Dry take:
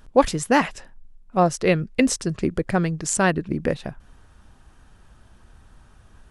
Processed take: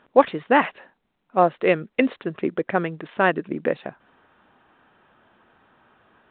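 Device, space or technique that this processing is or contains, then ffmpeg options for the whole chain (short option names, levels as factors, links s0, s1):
telephone: -af "highpass=300,lowpass=3000,volume=1.26" -ar 8000 -c:a pcm_mulaw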